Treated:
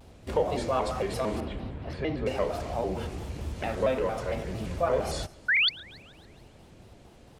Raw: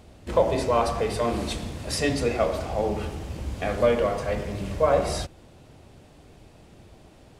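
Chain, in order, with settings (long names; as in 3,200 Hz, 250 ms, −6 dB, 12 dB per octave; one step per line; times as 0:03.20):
0:05.48–0:05.69: sound drawn into the spectrogram rise 1,300–4,300 Hz −17 dBFS
in parallel at −1 dB: downward compressor, threshold −29 dBFS, peak gain reduction 14 dB
0:01.40–0:02.26: on the sum: high-frequency loss of the air 430 metres
feedback echo with a high-pass in the loop 144 ms, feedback 56%, level −22 dB
pitch modulation by a square or saw wave square 4.4 Hz, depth 160 cents
level −7.5 dB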